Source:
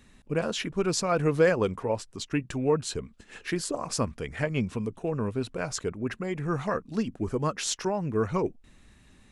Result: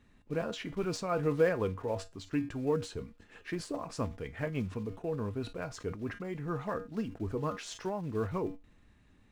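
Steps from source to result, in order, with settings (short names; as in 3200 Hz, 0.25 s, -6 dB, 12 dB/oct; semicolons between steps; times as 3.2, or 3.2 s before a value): block floating point 5-bit; LPF 2200 Hz 6 dB/oct; resonator 95 Hz, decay 0.25 s, harmonics odd, mix 60%; sustainer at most 140 dB/s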